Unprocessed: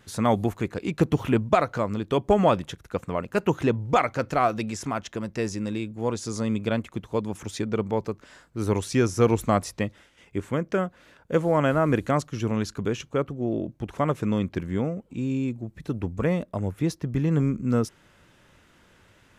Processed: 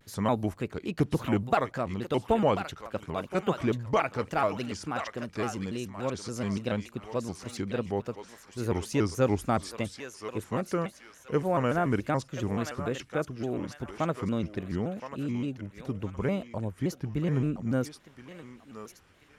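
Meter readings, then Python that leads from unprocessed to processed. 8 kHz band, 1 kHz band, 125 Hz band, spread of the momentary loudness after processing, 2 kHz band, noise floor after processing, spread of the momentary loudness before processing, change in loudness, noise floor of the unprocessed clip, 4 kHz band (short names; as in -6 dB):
-5.0 dB, -4.5 dB, -5.0 dB, 11 LU, -3.5 dB, -57 dBFS, 10 LU, -5.0 dB, -59 dBFS, -3.5 dB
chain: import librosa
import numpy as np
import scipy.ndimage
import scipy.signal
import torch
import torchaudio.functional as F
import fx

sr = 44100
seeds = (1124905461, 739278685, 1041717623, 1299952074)

p1 = fx.notch(x, sr, hz=7200.0, q=15.0)
p2 = p1 + fx.echo_thinned(p1, sr, ms=1030, feedback_pct=42, hz=1000.0, wet_db=-6, dry=0)
p3 = fx.vibrato_shape(p2, sr, shape='square', rate_hz=3.5, depth_cents=160.0)
y = F.gain(torch.from_numpy(p3), -5.0).numpy()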